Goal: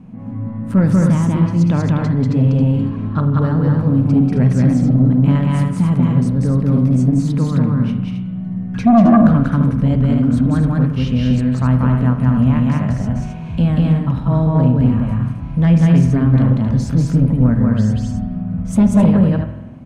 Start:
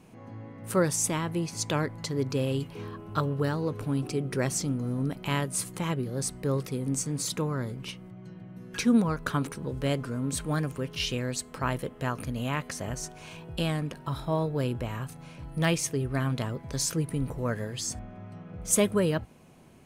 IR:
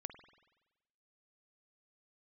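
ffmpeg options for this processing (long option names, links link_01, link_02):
-filter_complex "[0:a]lowpass=frequency=1100:poles=1,aemphasis=mode=reproduction:type=75kf,asplit=2[link_01][link_02];[link_02]aecho=0:1:189.5|265.3:0.891|0.501[link_03];[link_01][link_03]amix=inputs=2:normalize=0,crystalizer=i=2:c=0,lowshelf=frequency=290:width_type=q:width=3:gain=7,bandreject=frequency=50:width_type=h:width=6,bandreject=frequency=100:width_type=h:width=6,bandreject=frequency=150:width_type=h:width=6,asplit=2[link_04][link_05];[link_05]aeval=exprs='1.06*sin(PI/2*3.98*val(0)/1.06)':channel_layout=same,volume=-6dB[link_06];[link_04][link_06]amix=inputs=2:normalize=0[link_07];[1:a]atrim=start_sample=2205[link_08];[link_07][link_08]afir=irnorm=-1:irlink=0"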